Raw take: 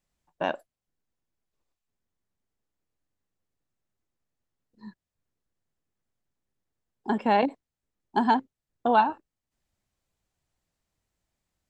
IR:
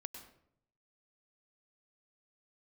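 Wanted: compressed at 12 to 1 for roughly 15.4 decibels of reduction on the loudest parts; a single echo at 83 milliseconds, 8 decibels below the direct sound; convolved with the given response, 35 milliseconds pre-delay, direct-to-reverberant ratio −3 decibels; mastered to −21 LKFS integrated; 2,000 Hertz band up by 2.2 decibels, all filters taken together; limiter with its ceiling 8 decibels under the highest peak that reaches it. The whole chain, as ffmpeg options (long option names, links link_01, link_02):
-filter_complex "[0:a]equalizer=frequency=2000:width_type=o:gain=3,acompressor=threshold=-31dB:ratio=12,alimiter=level_in=1dB:limit=-24dB:level=0:latency=1,volume=-1dB,aecho=1:1:83:0.398,asplit=2[link_01][link_02];[1:a]atrim=start_sample=2205,adelay=35[link_03];[link_02][link_03]afir=irnorm=-1:irlink=0,volume=6.5dB[link_04];[link_01][link_04]amix=inputs=2:normalize=0,volume=15.5dB"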